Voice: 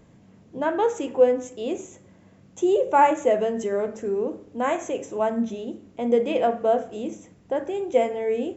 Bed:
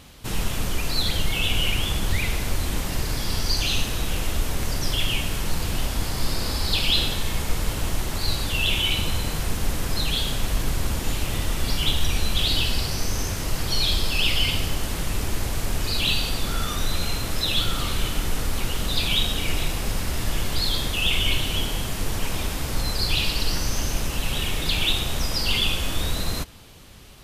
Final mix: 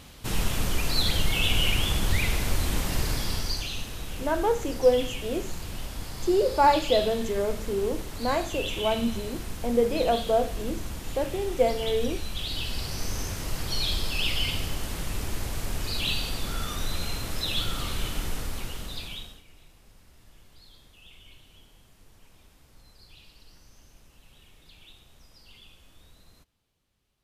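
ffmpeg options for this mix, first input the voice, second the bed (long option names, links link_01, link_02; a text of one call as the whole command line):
ffmpeg -i stem1.wav -i stem2.wav -filter_complex "[0:a]adelay=3650,volume=-2.5dB[link_01];[1:a]volume=4dB,afade=type=out:start_time=3.07:duration=0.63:silence=0.334965,afade=type=in:start_time=12.49:duration=0.57:silence=0.562341,afade=type=out:start_time=18.23:duration=1.2:silence=0.0595662[link_02];[link_01][link_02]amix=inputs=2:normalize=0" out.wav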